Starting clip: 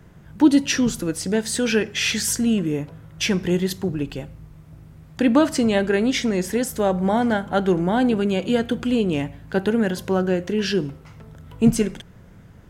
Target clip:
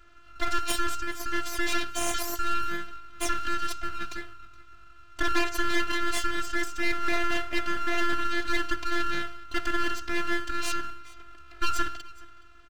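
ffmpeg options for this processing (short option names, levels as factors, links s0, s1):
-filter_complex "[0:a]afreqshift=490,afftfilt=real='hypot(re,im)*cos(PI*b)':imag='0':win_size=512:overlap=0.75,aresample=16000,asoftclip=type=hard:threshold=0.188,aresample=44100,bandreject=f=62.91:t=h:w=4,bandreject=f=125.82:t=h:w=4,bandreject=f=188.73:t=h:w=4,bandreject=f=251.64:t=h:w=4,bandreject=f=314.55:t=h:w=4,bandreject=f=377.46:t=h:w=4,bandreject=f=440.37:t=h:w=4,bandreject=f=503.28:t=h:w=4,bandreject=f=566.19:t=h:w=4,bandreject=f=629.1:t=h:w=4,bandreject=f=692.01:t=h:w=4,bandreject=f=754.92:t=h:w=4,bandreject=f=817.83:t=h:w=4,bandreject=f=880.74:t=h:w=4,bandreject=f=943.65:t=h:w=4,bandreject=f=1006.56:t=h:w=4,bandreject=f=1069.47:t=h:w=4,bandreject=f=1132.38:t=h:w=4,bandreject=f=1195.29:t=h:w=4,bandreject=f=1258.2:t=h:w=4,bandreject=f=1321.11:t=h:w=4,bandreject=f=1384.02:t=h:w=4,bandreject=f=1446.93:t=h:w=4,bandreject=f=1509.84:t=h:w=4,bandreject=f=1572.75:t=h:w=4,bandreject=f=1635.66:t=h:w=4,bandreject=f=1698.57:t=h:w=4,aeval=exprs='abs(val(0))':c=same,asplit=2[s0][s1];[s1]aecho=0:1:420:0.075[s2];[s0][s2]amix=inputs=2:normalize=0"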